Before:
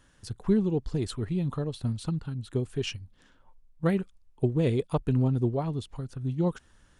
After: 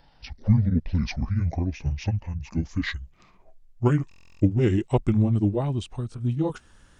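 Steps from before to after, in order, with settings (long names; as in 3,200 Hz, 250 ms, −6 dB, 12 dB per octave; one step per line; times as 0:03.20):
pitch glide at a constant tempo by −11.5 semitones ending unshifted
buffer that repeats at 0:04.09, samples 1,024, times 13
level +5.5 dB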